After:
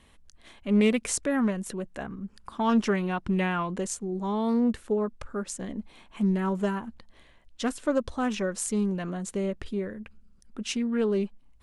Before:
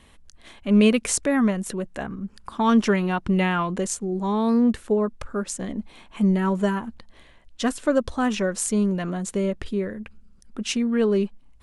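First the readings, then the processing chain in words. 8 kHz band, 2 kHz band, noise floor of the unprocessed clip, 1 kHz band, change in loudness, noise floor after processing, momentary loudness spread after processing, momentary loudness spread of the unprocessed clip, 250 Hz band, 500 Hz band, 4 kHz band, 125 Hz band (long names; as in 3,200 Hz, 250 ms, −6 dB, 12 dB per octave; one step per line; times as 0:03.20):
−5.0 dB, −5.0 dB, −52 dBFS, −5.0 dB, −5.0 dB, −57 dBFS, 13 LU, 13 LU, −5.0 dB, −4.5 dB, −5.5 dB, −5.0 dB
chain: highs frequency-modulated by the lows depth 0.2 ms
level −5 dB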